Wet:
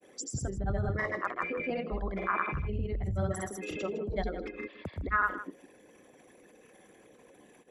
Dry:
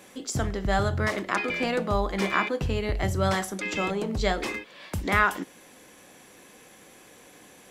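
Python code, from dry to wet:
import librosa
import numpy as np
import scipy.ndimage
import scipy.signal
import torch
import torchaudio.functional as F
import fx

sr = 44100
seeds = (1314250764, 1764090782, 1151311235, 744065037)

y = fx.envelope_sharpen(x, sr, power=2.0)
y = fx.granulator(y, sr, seeds[0], grain_ms=100.0, per_s=20.0, spray_ms=100.0, spread_st=0)
y = y + 10.0 ** (-13.5 / 20.0) * np.pad(y, (int(158 * sr / 1000.0), 0))[:len(y)]
y = y * librosa.db_to_amplitude(-5.0)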